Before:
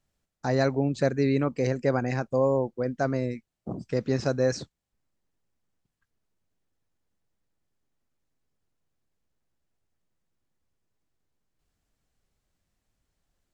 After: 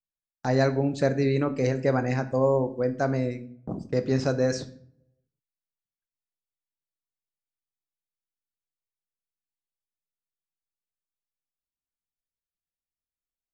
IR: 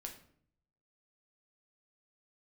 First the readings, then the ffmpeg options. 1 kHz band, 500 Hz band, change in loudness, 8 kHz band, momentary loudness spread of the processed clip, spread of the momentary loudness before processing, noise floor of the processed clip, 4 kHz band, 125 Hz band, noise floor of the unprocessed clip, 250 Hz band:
+1.5 dB, +1.0 dB, +1.0 dB, +1.0 dB, 11 LU, 10 LU, under -85 dBFS, +1.0 dB, +1.5 dB, -82 dBFS, +1.0 dB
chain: -filter_complex "[0:a]agate=range=-28dB:threshold=-42dB:ratio=16:detection=peak,asplit=2[a][b];[1:a]atrim=start_sample=2205[c];[b][c]afir=irnorm=-1:irlink=0,volume=3.5dB[d];[a][d]amix=inputs=2:normalize=0,volume=-4.5dB"

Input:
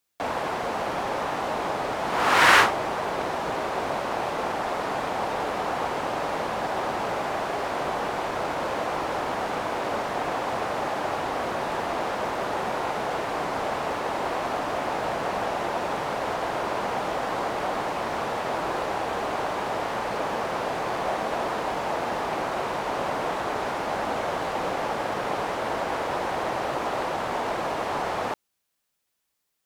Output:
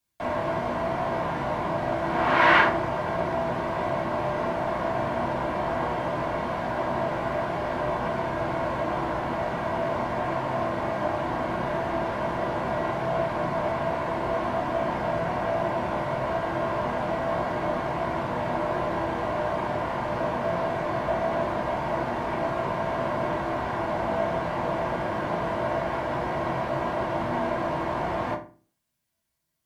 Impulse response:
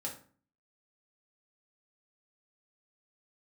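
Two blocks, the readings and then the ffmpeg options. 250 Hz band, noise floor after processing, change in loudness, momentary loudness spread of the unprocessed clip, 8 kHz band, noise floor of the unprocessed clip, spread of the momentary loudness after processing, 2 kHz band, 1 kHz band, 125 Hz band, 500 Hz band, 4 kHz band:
+3.5 dB, -33 dBFS, 0.0 dB, 1 LU, under -10 dB, -75 dBFS, 2 LU, -2.0 dB, -1.0 dB, +7.5 dB, +1.5 dB, -6.5 dB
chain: -filter_complex "[0:a]acrossover=split=3500[a][b];[b]acompressor=threshold=-54dB:ratio=4:attack=1:release=60[c];[a][c]amix=inputs=2:normalize=0,acrossover=split=150[d][e];[d]aeval=exprs='0.0224*sin(PI/2*3.16*val(0)/0.0224)':c=same[f];[f][e]amix=inputs=2:normalize=0[g];[1:a]atrim=start_sample=2205,asetrate=52920,aresample=44100[h];[g][h]afir=irnorm=-1:irlink=0"

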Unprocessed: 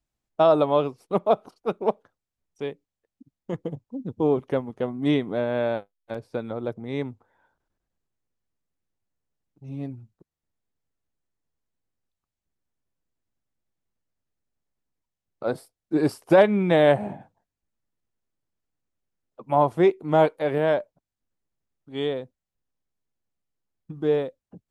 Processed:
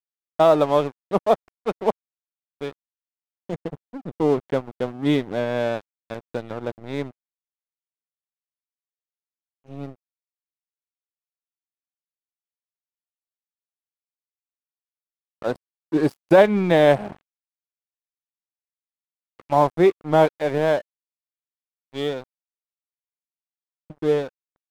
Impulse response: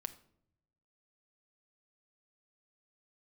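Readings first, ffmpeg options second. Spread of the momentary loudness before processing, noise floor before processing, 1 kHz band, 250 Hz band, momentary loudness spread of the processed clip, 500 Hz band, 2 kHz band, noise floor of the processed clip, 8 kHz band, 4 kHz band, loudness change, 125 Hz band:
17 LU, under -85 dBFS, +2.5 dB, +1.5 dB, 20 LU, +2.0 dB, +3.0 dB, under -85 dBFS, n/a, +3.0 dB, +2.5 dB, +1.5 dB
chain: -af "aeval=exprs='sgn(val(0))*max(abs(val(0))-0.015,0)':c=same,volume=3dB"

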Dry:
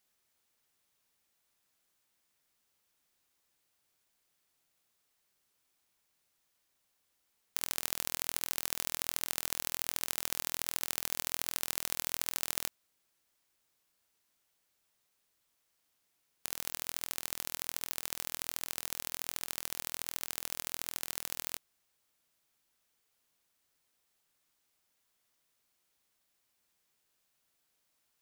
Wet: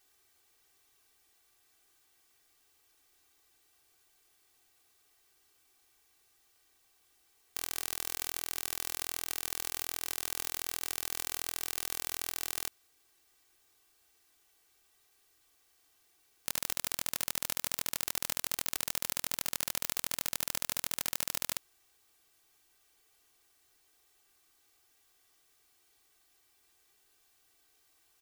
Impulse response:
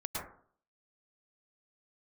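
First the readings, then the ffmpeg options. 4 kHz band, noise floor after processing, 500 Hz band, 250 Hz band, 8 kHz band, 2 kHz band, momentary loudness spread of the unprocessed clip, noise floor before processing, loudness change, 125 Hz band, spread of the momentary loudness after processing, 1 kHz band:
+1.0 dB, -70 dBFS, +1.0 dB, +1.5 dB, +1.0 dB, +1.0 dB, 4 LU, -78 dBFS, +1.0 dB, +1.5 dB, 2 LU, +1.0 dB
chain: -af "aecho=1:1:2.6:0.98,aeval=exprs='(mod(4.47*val(0)+1,2)-1)/4.47':c=same,volume=5.5dB"

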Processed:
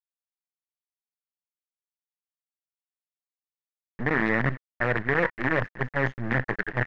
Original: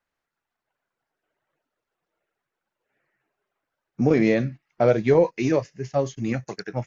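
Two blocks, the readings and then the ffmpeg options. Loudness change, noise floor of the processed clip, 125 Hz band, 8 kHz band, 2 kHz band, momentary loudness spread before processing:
-4.0 dB, under -85 dBFS, -2.5 dB, n/a, +9.0 dB, 10 LU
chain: -af "lowshelf=f=290:g=11,areverse,acompressor=threshold=-28dB:ratio=6,areverse,acrusher=bits=5:dc=4:mix=0:aa=0.000001,aeval=exprs='0.133*(cos(1*acos(clip(val(0)/0.133,-1,1)))-cos(1*PI/2))+0.0237*(cos(5*acos(clip(val(0)/0.133,-1,1)))-cos(5*PI/2))':c=same,lowpass=f=1.8k:t=q:w=7.4"

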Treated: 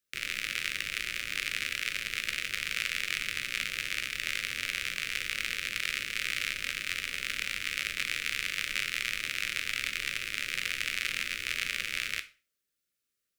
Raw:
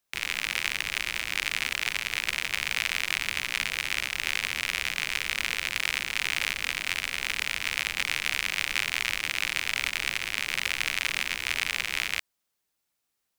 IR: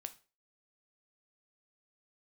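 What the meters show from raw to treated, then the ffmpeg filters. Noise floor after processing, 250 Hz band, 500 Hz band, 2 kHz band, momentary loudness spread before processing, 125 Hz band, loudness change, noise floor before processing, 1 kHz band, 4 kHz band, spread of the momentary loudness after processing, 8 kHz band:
-84 dBFS, -4.0 dB, -5.5 dB, -4.0 dB, 2 LU, -4.0 dB, -4.0 dB, -80 dBFS, -7.5 dB, -4.0 dB, 2 LU, -4.0 dB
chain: -filter_complex "[0:a]asuperstop=centerf=850:order=8:qfactor=1.4[a];[1:a]atrim=start_sample=2205[b];[a][b]afir=irnorm=-1:irlink=0"

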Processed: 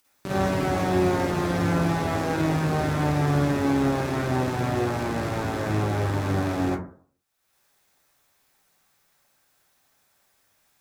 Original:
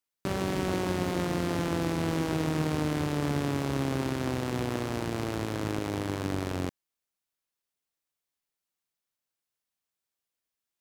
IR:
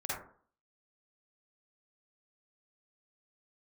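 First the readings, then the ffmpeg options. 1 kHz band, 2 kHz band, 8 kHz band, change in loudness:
+8.0 dB, +6.5 dB, +2.0 dB, +6.0 dB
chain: -filter_complex "[0:a]acompressor=mode=upward:threshold=-53dB:ratio=2.5[a];[1:a]atrim=start_sample=2205[b];[a][b]afir=irnorm=-1:irlink=0,volume=2.5dB"

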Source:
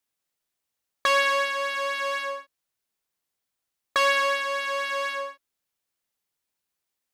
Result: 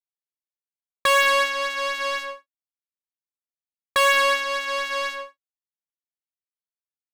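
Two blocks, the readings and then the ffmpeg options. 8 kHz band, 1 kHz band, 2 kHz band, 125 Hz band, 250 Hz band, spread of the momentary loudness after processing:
+6.0 dB, +3.0 dB, +3.5 dB, n/a, +4.0 dB, 12 LU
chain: -af "agate=range=-33dB:threshold=-28dB:ratio=3:detection=peak,acontrast=77,aeval=exprs='0.562*(cos(1*acos(clip(val(0)/0.562,-1,1)))-cos(1*PI/2))+0.0562*(cos(7*acos(clip(val(0)/0.562,-1,1)))-cos(7*PI/2))':c=same,volume=-2.5dB"

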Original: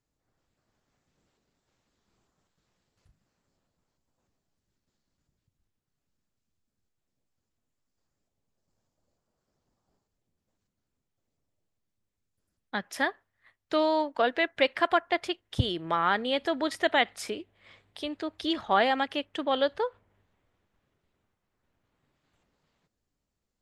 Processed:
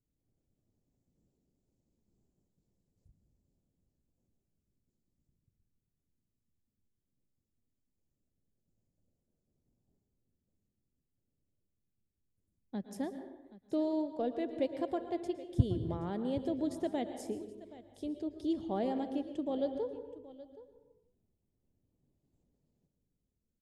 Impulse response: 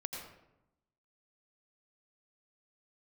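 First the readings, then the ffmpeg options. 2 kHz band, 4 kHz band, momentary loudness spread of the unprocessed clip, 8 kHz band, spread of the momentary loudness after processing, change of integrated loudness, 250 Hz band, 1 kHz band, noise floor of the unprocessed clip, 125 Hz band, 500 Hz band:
-26.0 dB, -21.0 dB, 11 LU, -10.5 dB, 16 LU, -8.0 dB, -1.0 dB, -15.5 dB, -84 dBFS, +0.5 dB, -7.5 dB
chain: -filter_complex "[0:a]firequalizer=gain_entry='entry(240,0);entry(1300,-28);entry(7000,-10)':delay=0.05:min_phase=1,aecho=1:1:774:0.133,asplit=2[a][b];[1:a]atrim=start_sample=2205,afade=t=out:st=0.42:d=0.01,atrim=end_sample=18963,asetrate=33075,aresample=44100[c];[b][c]afir=irnorm=-1:irlink=0,volume=-4dB[d];[a][d]amix=inputs=2:normalize=0,volume=-4dB"

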